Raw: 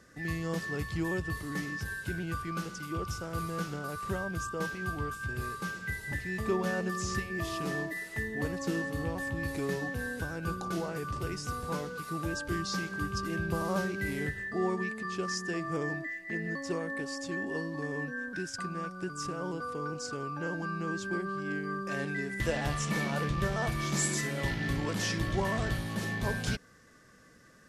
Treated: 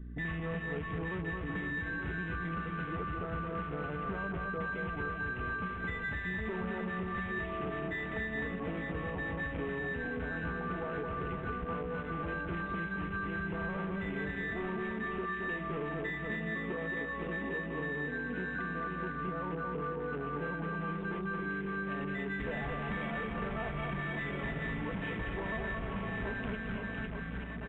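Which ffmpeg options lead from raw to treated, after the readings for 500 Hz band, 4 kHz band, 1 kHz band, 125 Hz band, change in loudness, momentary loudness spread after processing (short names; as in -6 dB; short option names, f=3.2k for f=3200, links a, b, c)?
-2.5 dB, -9.5 dB, -1.5 dB, -4.0 dB, -2.5 dB, 1 LU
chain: -filter_complex "[0:a]aeval=exprs='val(0)+0.00398*(sin(2*PI*60*n/s)+sin(2*PI*2*60*n/s)/2+sin(2*PI*3*60*n/s)/3+sin(2*PI*4*60*n/s)/4+sin(2*PI*5*60*n/s)/5)':c=same,aresample=8000,asoftclip=type=hard:threshold=-30dB,aresample=44100,aecho=1:1:4.5:0.42,asplit=2[a][b];[b]aecho=0:1:220|506|877.8|1361|1989:0.631|0.398|0.251|0.158|0.1[c];[a][c]amix=inputs=2:normalize=0,acompressor=threshold=-39dB:ratio=6,afwtdn=0.00398,volume=5dB"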